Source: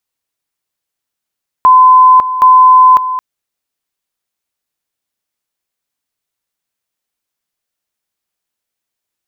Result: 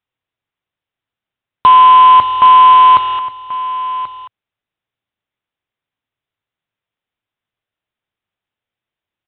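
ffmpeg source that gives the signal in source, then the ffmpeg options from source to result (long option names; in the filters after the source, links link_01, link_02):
-f lavfi -i "aevalsrc='pow(10,(-1.5-12*gte(mod(t,0.77),0.55))/20)*sin(2*PI*1020*t)':duration=1.54:sample_rate=44100"
-af "equalizer=frequency=110:width=2.2:gain=8.5,aresample=8000,acrusher=bits=3:mode=log:mix=0:aa=0.000001,aresample=44100,aecho=1:1:1084:0.188"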